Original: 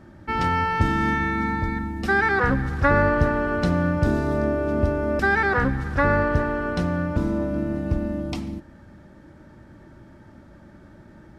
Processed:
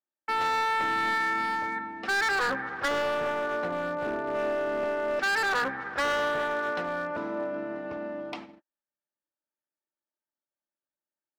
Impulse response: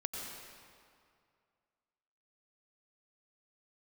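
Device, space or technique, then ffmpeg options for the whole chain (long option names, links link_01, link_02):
walkie-talkie: -filter_complex "[0:a]asettb=1/sr,asplit=3[link_01][link_02][link_03];[link_01]atrim=end=2.884[link_04];[link_02]atrim=start=2.88:end=4.35,asetpts=PTS-STARTPTS,afade=type=in:duration=0.004:curve=qsin,afade=type=out:start_time=1.466:duration=0.004:curve=qsin,lowpass=frequency=1200:poles=1[link_05];[link_03]atrim=start=4.346[link_06];[link_04][link_05]acrossfade=duration=0.004:curve1=hsin:curve2=qsin[link_07];[link_07][link_06]acrossfade=duration=0.004:curve1=qsin:curve2=hsin,highpass=580,lowpass=2700,asoftclip=type=hard:threshold=-25dB,agate=range=-46dB:threshold=-43dB:ratio=16:detection=peak,volume=1dB"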